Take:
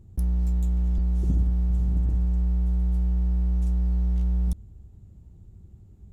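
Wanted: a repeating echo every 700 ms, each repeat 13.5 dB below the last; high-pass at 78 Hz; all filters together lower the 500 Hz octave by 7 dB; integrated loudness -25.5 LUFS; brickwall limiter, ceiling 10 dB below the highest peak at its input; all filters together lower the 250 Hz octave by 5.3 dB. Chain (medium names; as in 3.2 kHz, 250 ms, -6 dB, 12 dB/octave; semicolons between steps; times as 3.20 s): high-pass 78 Hz; peaking EQ 250 Hz -8.5 dB; peaking EQ 500 Hz -6 dB; peak limiter -28.5 dBFS; feedback delay 700 ms, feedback 21%, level -13.5 dB; trim +10 dB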